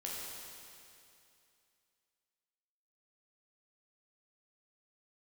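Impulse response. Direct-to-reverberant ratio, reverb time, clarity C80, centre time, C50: -5.0 dB, 2.6 s, -0.5 dB, 0.152 s, -2.0 dB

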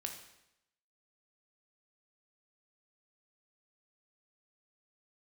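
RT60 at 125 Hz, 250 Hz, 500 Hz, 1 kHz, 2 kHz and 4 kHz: 0.85, 0.85, 0.85, 0.85, 0.85, 0.80 s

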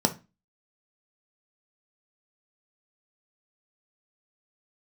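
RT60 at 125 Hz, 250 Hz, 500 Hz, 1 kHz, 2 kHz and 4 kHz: 0.35, 0.40, 0.25, 0.25, 0.30, 0.25 s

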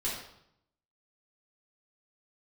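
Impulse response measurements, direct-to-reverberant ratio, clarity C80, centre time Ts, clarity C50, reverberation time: -7.0 dB, 6.0 dB, 47 ms, 2.5 dB, 0.75 s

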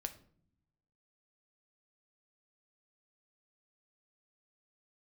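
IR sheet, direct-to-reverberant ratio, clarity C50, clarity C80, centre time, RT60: 7.5 dB, 14.0 dB, 18.0 dB, 6 ms, not exponential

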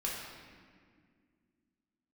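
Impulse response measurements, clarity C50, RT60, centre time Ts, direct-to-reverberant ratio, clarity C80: 0.5 dB, 2.0 s, 88 ms, -5.0 dB, 2.5 dB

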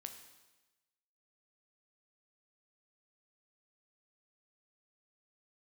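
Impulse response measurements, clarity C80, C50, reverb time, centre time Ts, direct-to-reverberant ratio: 10.0 dB, 8.5 dB, 1.1 s, 20 ms, 5.5 dB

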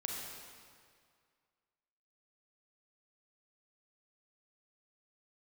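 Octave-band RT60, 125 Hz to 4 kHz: 2.1, 2.0, 2.0, 2.1, 1.9, 1.7 s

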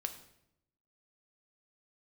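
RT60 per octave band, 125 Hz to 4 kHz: 1.1, 1.0, 0.85, 0.70, 0.70, 0.65 s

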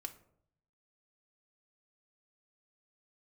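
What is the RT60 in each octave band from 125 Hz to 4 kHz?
1.1, 0.75, 0.75, 0.60, 0.45, 0.30 s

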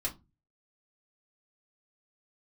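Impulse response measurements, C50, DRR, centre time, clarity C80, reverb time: 16.0 dB, -4.0 dB, 12 ms, 25.0 dB, 0.25 s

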